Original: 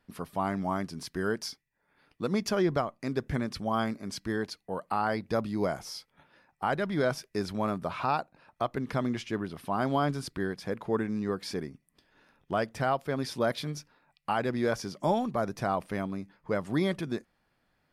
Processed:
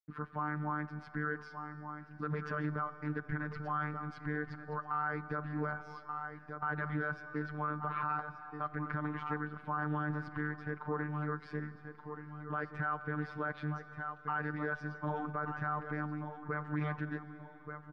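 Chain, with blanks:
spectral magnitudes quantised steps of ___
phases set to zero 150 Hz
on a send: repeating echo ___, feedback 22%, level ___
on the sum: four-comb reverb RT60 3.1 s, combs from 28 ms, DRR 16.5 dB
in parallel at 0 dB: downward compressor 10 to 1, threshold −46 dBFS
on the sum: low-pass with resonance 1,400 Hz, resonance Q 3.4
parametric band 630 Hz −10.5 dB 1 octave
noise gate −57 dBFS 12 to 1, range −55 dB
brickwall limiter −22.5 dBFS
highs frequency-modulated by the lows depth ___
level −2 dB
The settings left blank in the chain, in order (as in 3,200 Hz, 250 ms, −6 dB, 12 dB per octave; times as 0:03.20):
15 dB, 1,179 ms, −12.5 dB, 0.16 ms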